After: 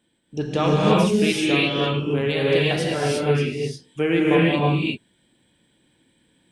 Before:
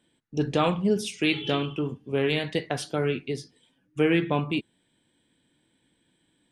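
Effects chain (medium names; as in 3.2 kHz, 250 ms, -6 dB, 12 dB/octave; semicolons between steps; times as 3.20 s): gated-style reverb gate 380 ms rising, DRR -5.5 dB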